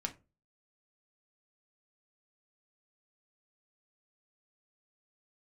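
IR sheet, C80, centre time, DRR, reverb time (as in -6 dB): 24.0 dB, 7 ms, 3.0 dB, 0.30 s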